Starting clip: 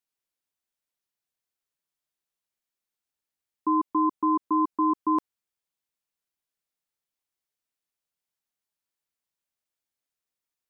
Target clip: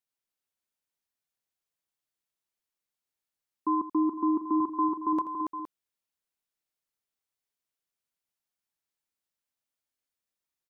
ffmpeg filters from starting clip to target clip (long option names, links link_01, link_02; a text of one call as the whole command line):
ffmpeg -i in.wav -filter_complex "[0:a]asettb=1/sr,asplit=3[link_01][link_02][link_03];[link_01]atrim=end=4.604[link_04];[link_02]atrim=start=4.6:end=5.13,asetpts=PTS-STARTPTS,afade=type=in:duration=0.004:curve=qsin,afade=type=out:start_time=0.526:duration=0.004:curve=qsin,equalizer=frequency=100:width_type=o:width=0.67:gain=12,equalizer=frequency=250:width_type=o:width=0.67:gain=-10,equalizer=frequency=1000:width_type=o:width=0.67:gain=4[link_05];[link_03]atrim=start=5.126[link_06];[link_04][link_05]acrossfade=duration=0.004:curve1=hsin:curve2=qsin[link_07];[link_07][link_06]acrossfade=duration=0.004:curve1=qsin:curve2=hsin,asplit=2[link_08][link_09];[link_09]aecho=0:1:82|282|466:0.188|0.562|0.266[link_10];[link_08][link_10]amix=inputs=2:normalize=0,volume=-3dB" out.wav